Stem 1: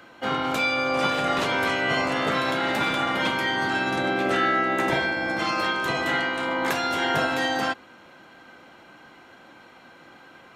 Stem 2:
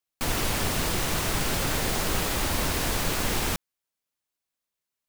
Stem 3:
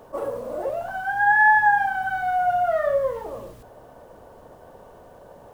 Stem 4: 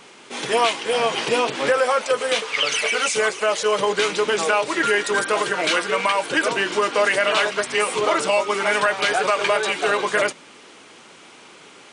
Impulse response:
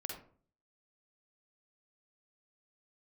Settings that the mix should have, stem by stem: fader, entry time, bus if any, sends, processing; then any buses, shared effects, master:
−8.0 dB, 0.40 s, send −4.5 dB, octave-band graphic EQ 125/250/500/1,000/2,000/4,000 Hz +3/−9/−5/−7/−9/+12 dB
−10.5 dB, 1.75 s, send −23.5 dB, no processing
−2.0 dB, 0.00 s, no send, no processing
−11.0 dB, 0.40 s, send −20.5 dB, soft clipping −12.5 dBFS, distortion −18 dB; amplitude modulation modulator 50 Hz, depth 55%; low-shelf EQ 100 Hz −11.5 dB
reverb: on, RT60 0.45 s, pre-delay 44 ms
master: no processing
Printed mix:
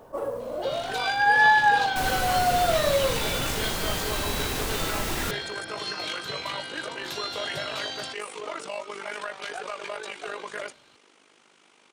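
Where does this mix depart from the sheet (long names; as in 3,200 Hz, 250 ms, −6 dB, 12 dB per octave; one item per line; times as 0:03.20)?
stem 1: send off
stem 2 −10.5 dB → −3.5 dB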